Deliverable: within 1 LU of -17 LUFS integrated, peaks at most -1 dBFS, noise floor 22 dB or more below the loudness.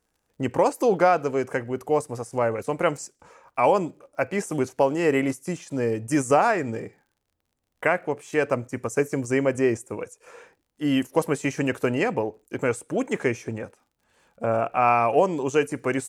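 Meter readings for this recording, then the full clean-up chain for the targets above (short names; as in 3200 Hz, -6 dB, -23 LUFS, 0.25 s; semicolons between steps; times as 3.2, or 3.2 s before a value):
ticks 41/s; loudness -24.5 LUFS; peak -7.5 dBFS; loudness target -17.0 LUFS
-> de-click; gain +7.5 dB; limiter -1 dBFS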